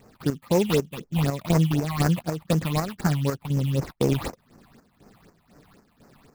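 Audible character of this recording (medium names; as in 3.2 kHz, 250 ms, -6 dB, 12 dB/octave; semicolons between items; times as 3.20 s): aliases and images of a low sample rate 3.1 kHz, jitter 20%; chopped level 2 Hz, depth 60%, duty 60%; phasing stages 6, 4 Hz, lowest notch 380–3500 Hz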